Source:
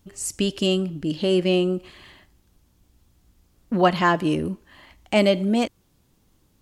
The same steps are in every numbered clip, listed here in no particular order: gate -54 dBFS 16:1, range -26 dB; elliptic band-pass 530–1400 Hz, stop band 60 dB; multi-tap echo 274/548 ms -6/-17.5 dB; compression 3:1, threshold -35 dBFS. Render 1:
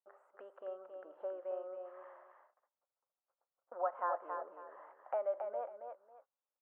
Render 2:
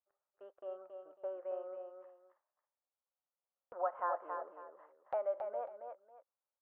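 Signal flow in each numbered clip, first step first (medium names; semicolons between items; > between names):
compression > multi-tap echo > gate > elliptic band-pass; compression > elliptic band-pass > gate > multi-tap echo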